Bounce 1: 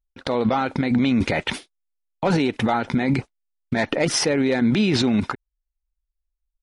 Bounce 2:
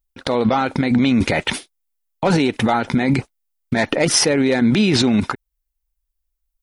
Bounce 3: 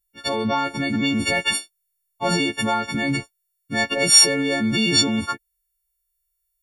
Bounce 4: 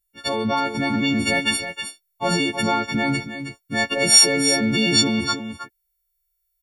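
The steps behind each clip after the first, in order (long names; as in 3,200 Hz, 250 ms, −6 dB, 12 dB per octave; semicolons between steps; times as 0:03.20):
high-shelf EQ 9,400 Hz +12 dB; level +3.5 dB
every partial snapped to a pitch grid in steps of 4 semitones; level −6.5 dB
single-tap delay 318 ms −9 dB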